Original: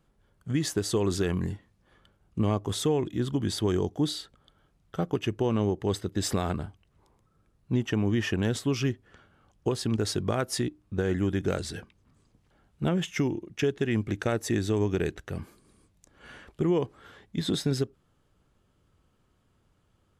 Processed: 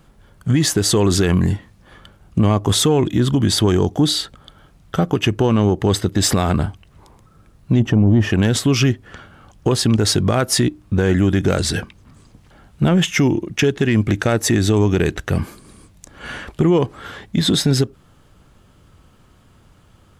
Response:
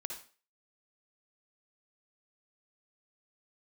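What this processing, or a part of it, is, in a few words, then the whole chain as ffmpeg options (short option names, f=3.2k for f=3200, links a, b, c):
mastering chain: -filter_complex "[0:a]asplit=3[a][b][c];[a]afade=t=out:st=7.79:d=0.02[d];[b]tiltshelf=f=690:g=9,afade=t=in:st=7.79:d=0.02,afade=t=out:st=8.29:d=0.02[e];[c]afade=t=in:st=8.29:d=0.02[f];[d][e][f]amix=inputs=3:normalize=0,equalizer=f=410:t=o:w=0.76:g=-3,acompressor=threshold=-32dB:ratio=1.5,asoftclip=type=tanh:threshold=-19.5dB,alimiter=level_in=24dB:limit=-1dB:release=50:level=0:latency=1,volume=-6.5dB"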